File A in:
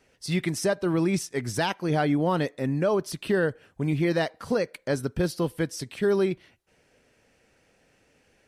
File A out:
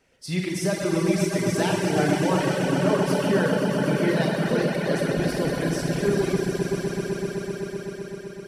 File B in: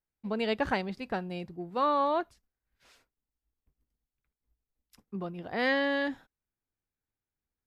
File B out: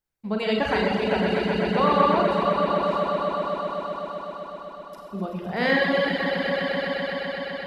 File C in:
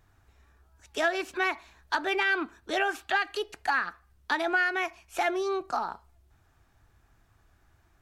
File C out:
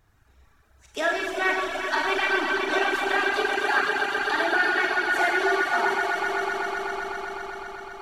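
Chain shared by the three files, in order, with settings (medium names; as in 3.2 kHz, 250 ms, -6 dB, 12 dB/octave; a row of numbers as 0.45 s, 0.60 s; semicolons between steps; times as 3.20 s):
echo with a slow build-up 127 ms, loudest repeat 5, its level -8.5 dB; Schroeder reverb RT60 2.6 s, combs from 33 ms, DRR -3.5 dB; reverb removal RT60 0.93 s; normalise loudness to -24 LUFS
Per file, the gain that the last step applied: -2.0 dB, +4.0 dB, 0.0 dB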